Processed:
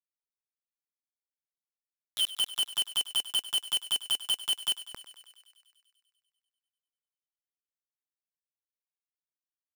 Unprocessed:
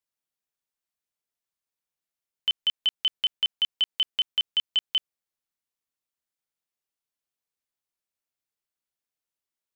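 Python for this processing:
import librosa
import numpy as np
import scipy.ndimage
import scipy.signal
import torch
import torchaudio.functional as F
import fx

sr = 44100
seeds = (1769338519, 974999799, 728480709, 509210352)

p1 = fx.spec_delay(x, sr, highs='early', ms=696)
p2 = fx.lowpass(p1, sr, hz=1400.0, slope=6)
p3 = fx.low_shelf(p2, sr, hz=90.0, db=11.0)
p4 = fx.level_steps(p3, sr, step_db=15)
p5 = p3 + (p4 * librosa.db_to_amplitude(1.5))
p6 = fx.transient(p5, sr, attack_db=11, sustain_db=-6)
p7 = fx.quant_companded(p6, sr, bits=2)
y = p7 + fx.echo_thinned(p7, sr, ms=98, feedback_pct=75, hz=530.0, wet_db=-15.0, dry=0)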